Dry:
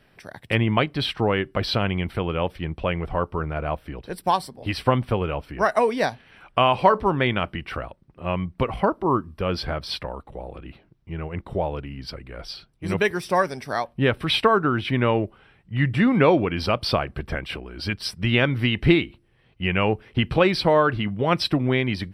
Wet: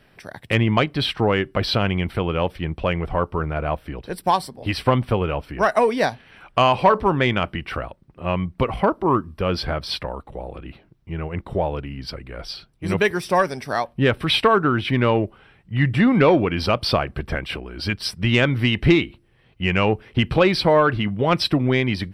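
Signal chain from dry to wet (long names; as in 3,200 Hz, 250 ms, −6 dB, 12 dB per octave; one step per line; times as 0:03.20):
soft clipping −7.5 dBFS, distortion −22 dB
level +3 dB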